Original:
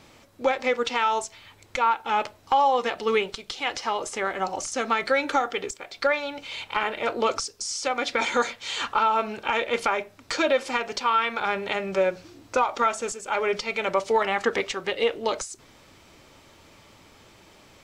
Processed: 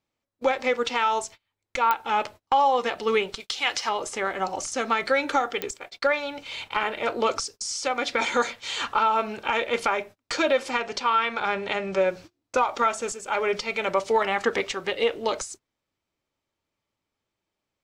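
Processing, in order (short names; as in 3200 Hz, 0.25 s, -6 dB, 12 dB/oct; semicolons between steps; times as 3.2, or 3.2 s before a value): gate -40 dBFS, range -31 dB; 3.4–3.89 tilt shelf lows -5.5 dB, about 910 Hz; 10.7–12.08 LPF 8200 Hz 12 dB/oct; pops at 1.91/5.62, -9 dBFS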